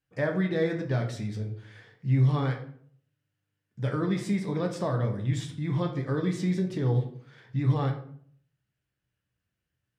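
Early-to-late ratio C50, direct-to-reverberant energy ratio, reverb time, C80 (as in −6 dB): 9.0 dB, 2.0 dB, 0.55 s, 12.5 dB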